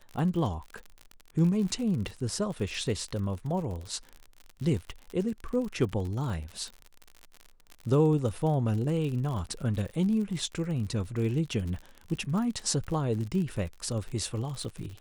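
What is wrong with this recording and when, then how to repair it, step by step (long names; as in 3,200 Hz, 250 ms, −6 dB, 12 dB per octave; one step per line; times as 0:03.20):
surface crackle 59 per second −35 dBFS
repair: click removal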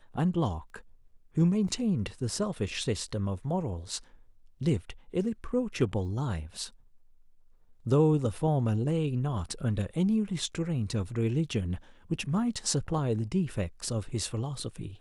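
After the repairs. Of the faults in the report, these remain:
none of them is left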